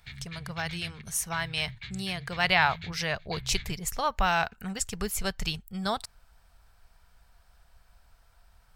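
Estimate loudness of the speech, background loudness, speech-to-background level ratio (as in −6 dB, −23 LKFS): −30.0 LKFS, −43.0 LKFS, 13.0 dB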